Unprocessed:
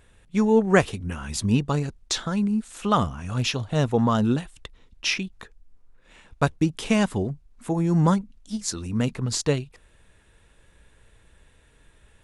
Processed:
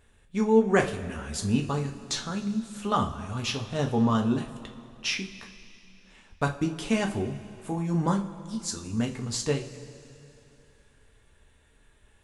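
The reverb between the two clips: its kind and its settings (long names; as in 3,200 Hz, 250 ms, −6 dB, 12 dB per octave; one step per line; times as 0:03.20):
coupled-rooms reverb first 0.3 s, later 2.9 s, from −18 dB, DRR 2 dB
level −6 dB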